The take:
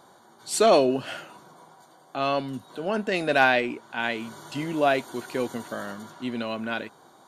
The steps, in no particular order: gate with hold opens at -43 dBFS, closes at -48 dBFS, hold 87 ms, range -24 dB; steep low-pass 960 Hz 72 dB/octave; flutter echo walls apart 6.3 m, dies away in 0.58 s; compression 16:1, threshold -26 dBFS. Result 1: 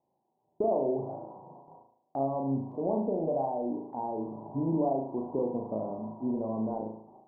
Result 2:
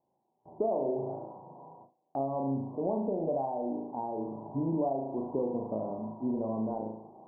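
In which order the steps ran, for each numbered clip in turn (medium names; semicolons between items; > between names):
compression > steep low-pass > gate with hold > flutter echo; flutter echo > compression > steep low-pass > gate with hold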